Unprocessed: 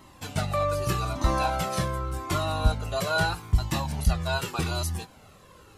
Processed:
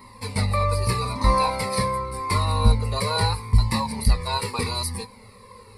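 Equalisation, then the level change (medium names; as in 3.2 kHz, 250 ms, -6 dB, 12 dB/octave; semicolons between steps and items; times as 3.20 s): rippled EQ curve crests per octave 0.92, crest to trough 17 dB; +1.5 dB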